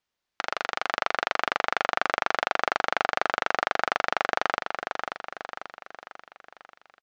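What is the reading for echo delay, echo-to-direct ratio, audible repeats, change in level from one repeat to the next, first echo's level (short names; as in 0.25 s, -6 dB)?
0.538 s, -4.5 dB, 5, -6.0 dB, -5.5 dB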